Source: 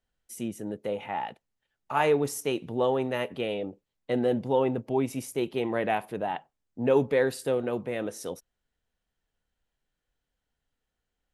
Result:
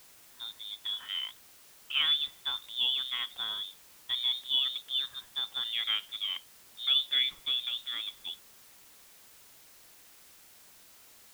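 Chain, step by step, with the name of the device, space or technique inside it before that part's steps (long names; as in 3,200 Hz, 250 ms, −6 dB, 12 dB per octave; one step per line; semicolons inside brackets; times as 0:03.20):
scrambled radio voice (band-pass filter 340–3,200 Hz; voice inversion scrambler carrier 3,900 Hz; white noise bed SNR 21 dB)
level −3.5 dB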